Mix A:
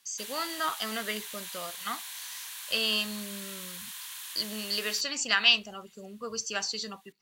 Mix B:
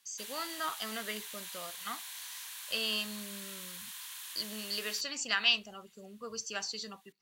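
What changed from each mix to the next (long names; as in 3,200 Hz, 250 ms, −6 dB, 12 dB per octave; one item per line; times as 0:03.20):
speech −5.5 dB
background −3.5 dB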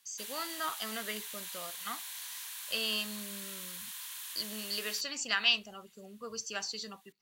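background: add high-shelf EQ 9,900 Hz +4 dB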